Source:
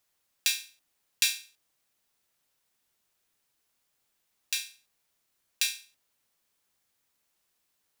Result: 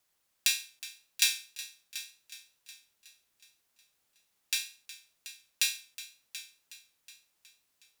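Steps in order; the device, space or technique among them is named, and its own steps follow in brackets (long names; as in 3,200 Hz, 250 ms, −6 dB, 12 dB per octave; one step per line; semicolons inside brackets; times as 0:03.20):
multi-head tape echo (echo machine with several playback heads 367 ms, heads first and second, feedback 42%, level −16.5 dB; tape wow and flutter 22 cents)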